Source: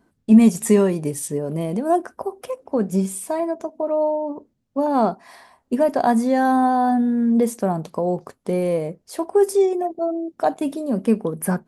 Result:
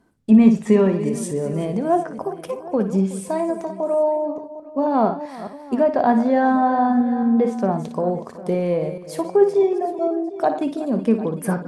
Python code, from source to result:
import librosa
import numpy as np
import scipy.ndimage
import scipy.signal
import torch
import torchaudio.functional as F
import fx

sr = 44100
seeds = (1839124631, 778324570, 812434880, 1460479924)

y = fx.reverse_delay(x, sr, ms=219, wet_db=-12.5)
y = fx.env_lowpass_down(y, sr, base_hz=3000.0, full_db=-15.0)
y = fx.echo_multitap(y, sr, ms=(57, 371, 753), db=(-10.0, -18.0, -18.0))